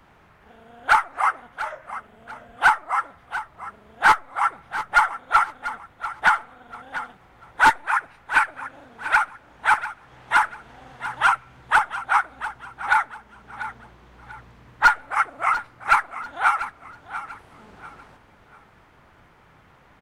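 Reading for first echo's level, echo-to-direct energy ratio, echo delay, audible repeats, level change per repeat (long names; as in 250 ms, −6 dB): −13.0 dB, −12.5 dB, 692 ms, 3, −10.0 dB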